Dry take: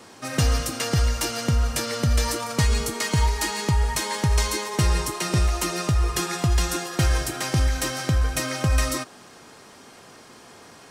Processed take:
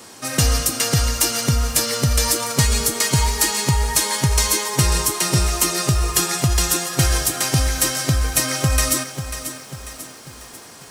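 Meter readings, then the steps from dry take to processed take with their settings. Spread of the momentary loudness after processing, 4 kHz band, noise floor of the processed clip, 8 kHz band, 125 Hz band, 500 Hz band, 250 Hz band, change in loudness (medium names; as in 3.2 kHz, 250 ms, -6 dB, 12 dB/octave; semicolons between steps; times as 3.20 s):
14 LU, +7.5 dB, -41 dBFS, +10.5 dB, +3.0 dB, +3.0 dB, +3.0 dB, +5.5 dB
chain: treble shelf 5.6 kHz +12 dB; bit-crushed delay 543 ms, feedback 55%, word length 7-bit, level -10.5 dB; trim +2.5 dB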